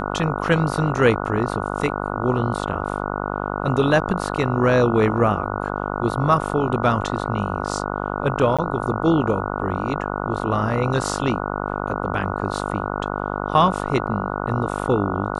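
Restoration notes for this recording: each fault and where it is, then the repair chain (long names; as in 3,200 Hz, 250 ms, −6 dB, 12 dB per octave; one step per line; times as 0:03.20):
mains buzz 50 Hz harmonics 29 −26 dBFS
0:08.57–0:08.59: drop-out 16 ms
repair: hum removal 50 Hz, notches 29
repair the gap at 0:08.57, 16 ms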